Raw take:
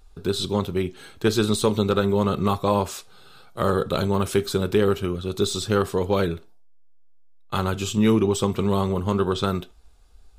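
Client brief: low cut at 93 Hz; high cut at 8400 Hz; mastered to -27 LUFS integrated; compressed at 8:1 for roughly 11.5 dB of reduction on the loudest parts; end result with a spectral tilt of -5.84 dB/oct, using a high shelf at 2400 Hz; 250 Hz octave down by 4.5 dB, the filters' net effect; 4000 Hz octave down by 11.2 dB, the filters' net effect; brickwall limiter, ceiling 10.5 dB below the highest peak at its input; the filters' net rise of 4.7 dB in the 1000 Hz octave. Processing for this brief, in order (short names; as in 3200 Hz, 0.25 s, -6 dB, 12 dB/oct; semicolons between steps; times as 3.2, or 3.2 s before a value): HPF 93 Hz; LPF 8400 Hz; bell 250 Hz -6.5 dB; bell 1000 Hz +7.5 dB; high shelf 2400 Hz -5.5 dB; bell 4000 Hz -9 dB; compressor 8:1, threshold -27 dBFS; gain +9.5 dB; limiter -14.5 dBFS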